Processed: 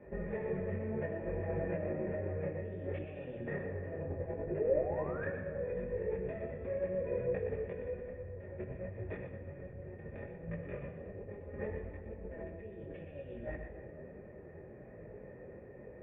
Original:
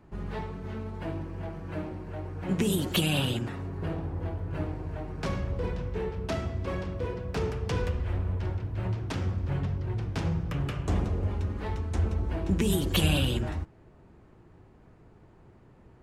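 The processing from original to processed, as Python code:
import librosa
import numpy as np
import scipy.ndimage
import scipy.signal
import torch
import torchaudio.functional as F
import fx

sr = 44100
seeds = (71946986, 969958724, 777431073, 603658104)

y = scipy.signal.sosfilt(scipy.signal.butter(2, 44.0, 'highpass', fs=sr, output='sos'), x)
y = fx.high_shelf(y, sr, hz=3000.0, db=-10.5)
y = fx.over_compress(y, sr, threshold_db=-39.0, ratio=-1.0)
y = fx.spec_paint(y, sr, seeds[0], shape='rise', start_s=4.46, length_s=0.82, low_hz=320.0, high_hz=1800.0, level_db=-38.0)
y = fx.formant_cascade(y, sr, vowel='e')
y = y + 10.0 ** (-8.5 / 20.0) * np.pad(y, (int(119 * sr / 1000.0), 0))[:len(y)]
y = fx.room_shoebox(y, sr, seeds[1], volume_m3=3600.0, walls='mixed', distance_m=1.3)
y = fx.detune_double(y, sr, cents=23)
y = y * librosa.db_to_amplitude(15.0)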